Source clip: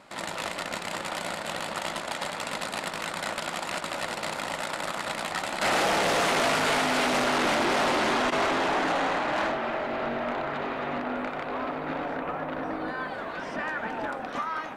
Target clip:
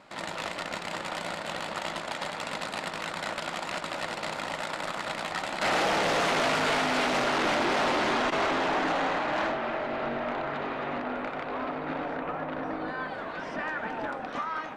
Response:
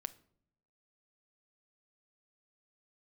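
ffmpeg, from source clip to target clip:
-filter_complex "[0:a]asplit=2[s0][s1];[1:a]atrim=start_sample=2205,lowpass=7600[s2];[s1][s2]afir=irnorm=-1:irlink=0,volume=1.41[s3];[s0][s3]amix=inputs=2:normalize=0,volume=0.422"

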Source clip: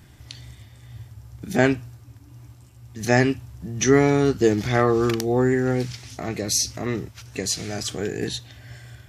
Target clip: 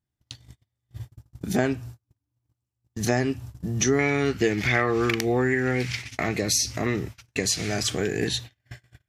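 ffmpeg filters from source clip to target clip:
-af "agate=range=0.0112:threshold=0.0126:ratio=16:detection=peak,asetnsamples=n=441:p=0,asendcmd='3.99 equalizer g 13.5;6.27 equalizer g 4.5',equalizer=f=2200:t=o:w=0.96:g=-3,acompressor=threshold=0.0562:ratio=3,volume=1.5"

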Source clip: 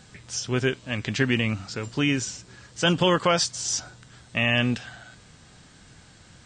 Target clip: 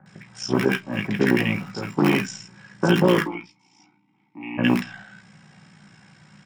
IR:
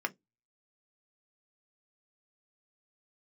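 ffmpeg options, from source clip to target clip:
-filter_complex "[0:a]lowshelf=f=430:g=11,tremolo=f=58:d=0.788,acrossover=split=220|560|1700[s0][s1][s2][s3];[s1]acrusher=bits=4:dc=4:mix=0:aa=0.000001[s4];[s0][s4][s2][s3]amix=inputs=4:normalize=0,asettb=1/sr,asplit=3[s5][s6][s7];[s5]atrim=end=3.214[s8];[s6]atrim=start=3.21:end=4.58,asetpts=PTS-STARTPTS,afade=t=in:d=0.004:c=qsin,afade=t=out:st=1.366:d=0.004:c=qsin,asplit=3[s9][s10][s11];[s9]bandpass=f=300:t=q:w=8,volume=1[s12];[s10]bandpass=f=870:t=q:w=8,volume=0.501[s13];[s11]bandpass=f=2240:t=q:w=8,volume=0.355[s14];[s12][s13][s14]amix=inputs=3:normalize=0[s15];[s7]atrim=start=4.576[s16];[s8][s15]acrossfade=d=0.004:c1=hsin:c2=qsin[s17];[s17][s16]acrossfade=d=0.004:c1=qsin:c2=hsin,acrossover=split=1300[s18][s19];[s19]adelay=60[s20];[s18][s20]amix=inputs=2:normalize=0[s21];[1:a]atrim=start_sample=2205[s22];[s21][s22]afir=irnorm=-1:irlink=0,alimiter=level_in=2.24:limit=0.891:release=50:level=0:latency=1,volume=0.473"

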